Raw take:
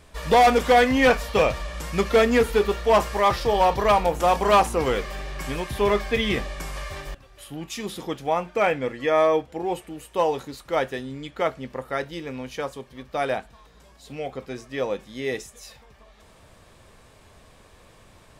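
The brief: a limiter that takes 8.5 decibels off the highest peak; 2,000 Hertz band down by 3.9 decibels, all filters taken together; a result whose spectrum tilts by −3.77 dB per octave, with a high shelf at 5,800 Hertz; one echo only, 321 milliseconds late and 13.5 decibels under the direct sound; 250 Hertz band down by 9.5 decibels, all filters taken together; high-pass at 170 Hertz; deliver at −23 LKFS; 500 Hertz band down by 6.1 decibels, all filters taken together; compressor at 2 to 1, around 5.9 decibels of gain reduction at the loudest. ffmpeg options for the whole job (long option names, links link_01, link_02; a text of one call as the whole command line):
ffmpeg -i in.wav -af "highpass=170,equalizer=frequency=250:width_type=o:gain=-9,equalizer=frequency=500:width_type=o:gain=-5,equalizer=frequency=2000:width_type=o:gain=-3.5,highshelf=frequency=5800:gain=-8,acompressor=threshold=-27dB:ratio=2,alimiter=level_in=0.5dB:limit=-24dB:level=0:latency=1,volume=-0.5dB,aecho=1:1:321:0.211,volume=13dB" out.wav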